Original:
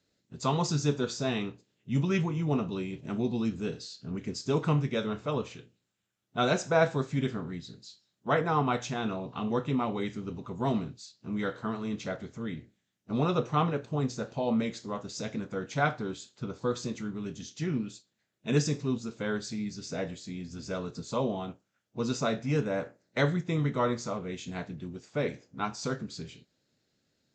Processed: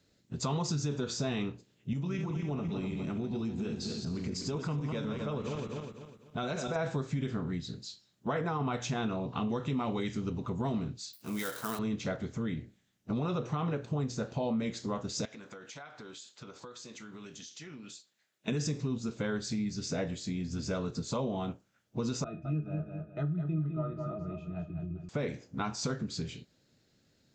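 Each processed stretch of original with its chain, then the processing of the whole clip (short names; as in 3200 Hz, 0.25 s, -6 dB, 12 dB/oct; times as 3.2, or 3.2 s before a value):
1.93–6.76 regenerating reverse delay 0.125 s, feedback 57%, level -7 dB + compressor 2.5:1, threshold -38 dBFS
9.49–10.3 LPF 7300 Hz + high shelf 4600 Hz +10.5 dB
11.13–11.79 switching dead time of 0.059 ms + RIAA curve recording
15.25–18.48 HPF 1000 Hz 6 dB/oct + compressor 16:1, threshold -48 dBFS
22.24–25.09 octave resonator D#, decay 0.11 s + feedback echo 0.207 s, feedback 34%, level -7 dB
whole clip: low shelf 160 Hz +6 dB; limiter -21.5 dBFS; compressor 2.5:1, threshold -37 dBFS; gain +4.5 dB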